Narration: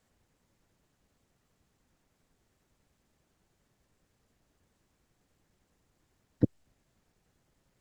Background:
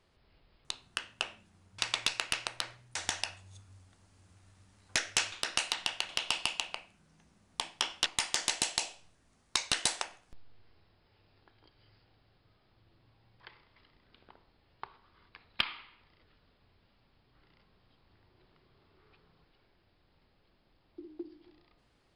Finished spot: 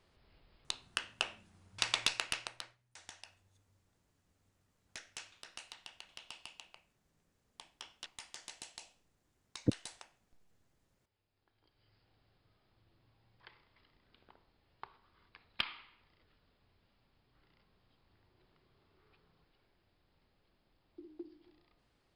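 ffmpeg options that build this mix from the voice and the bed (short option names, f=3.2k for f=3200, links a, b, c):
-filter_complex "[0:a]adelay=3250,volume=-5dB[a];[1:a]volume=13dB,afade=t=out:st=2.01:d=0.76:silence=0.125893,afade=t=in:st=11.32:d=0.91:silence=0.211349[b];[a][b]amix=inputs=2:normalize=0"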